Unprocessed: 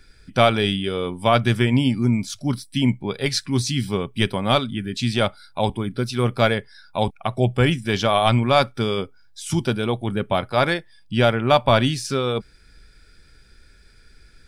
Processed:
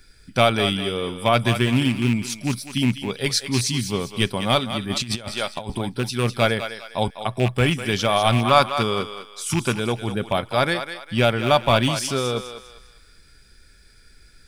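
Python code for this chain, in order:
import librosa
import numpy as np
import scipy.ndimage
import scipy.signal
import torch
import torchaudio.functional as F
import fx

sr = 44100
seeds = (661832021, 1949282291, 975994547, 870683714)

y = fx.rattle_buzz(x, sr, strikes_db=-19.0, level_db=-18.0)
y = fx.high_shelf(y, sr, hz=6300.0, db=9.0)
y = fx.echo_thinned(y, sr, ms=201, feedback_pct=37, hz=580.0, wet_db=-8.5)
y = fx.over_compress(y, sr, threshold_db=-26.0, ratio=-0.5, at=(4.89, 5.78), fade=0.02)
y = fx.peak_eq(y, sr, hz=1100.0, db=8.0, octaves=0.64, at=(8.45, 9.8))
y = y * 10.0 ** (-1.5 / 20.0)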